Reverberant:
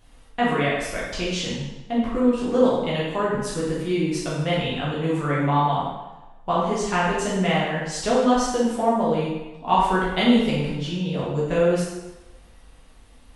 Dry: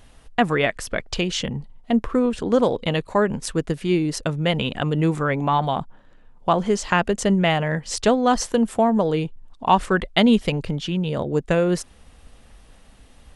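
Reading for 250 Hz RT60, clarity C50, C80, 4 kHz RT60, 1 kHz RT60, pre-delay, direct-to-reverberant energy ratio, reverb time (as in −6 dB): 0.90 s, −0.5 dB, 3.0 dB, 0.90 s, 1.1 s, 8 ms, −7.5 dB, 1.1 s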